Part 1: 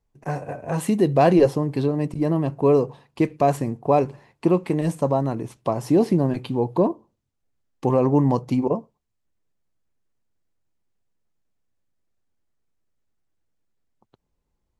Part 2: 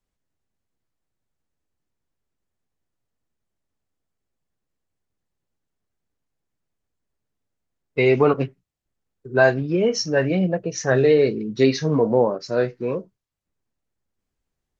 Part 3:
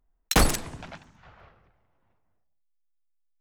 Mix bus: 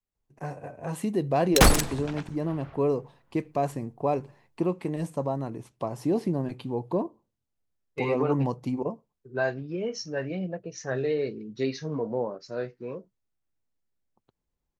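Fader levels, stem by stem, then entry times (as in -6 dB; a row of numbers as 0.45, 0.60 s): -8.0, -11.5, +2.5 dB; 0.15, 0.00, 1.25 s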